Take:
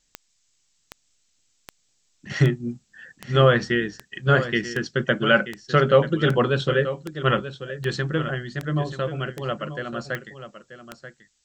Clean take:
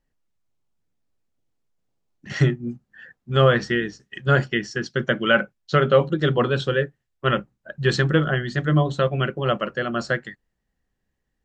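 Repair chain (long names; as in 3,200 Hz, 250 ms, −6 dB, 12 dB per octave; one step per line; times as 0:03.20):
click removal
downward expander −60 dBFS, range −21 dB
echo removal 934 ms −12 dB
level correction +6 dB, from 0:07.55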